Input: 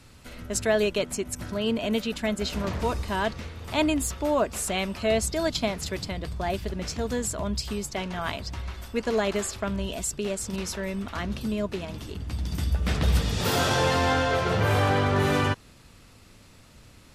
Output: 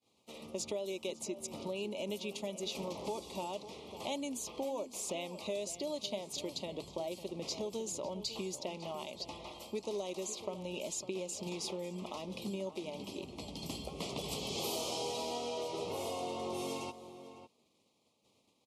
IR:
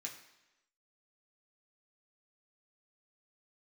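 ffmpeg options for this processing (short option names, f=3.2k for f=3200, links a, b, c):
-filter_complex "[0:a]agate=range=-33dB:threshold=-41dB:ratio=3:detection=peak,highpass=320,highshelf=f=5.7k:g=-6.5,acrossover=split=5500[a][b];[a]acompressor=threshold=-36dB:ratio=6[c];[b]alimiter=level_in=9dB:limit=-24dB:level=0:latency=1:release=311,volume=-9dB[d];[c][d]amix=inputs=2:normalize=0,asplit=2[e][f];[f]adelay=507.3,volume=-12dB,highshelf=f=4k:g=-11.4[g];[e][g]amix=inputs=2:normalize=0,asetrate=40517,aresample=44100,asuperstop=centerf=1600:order=4:qfactor=1"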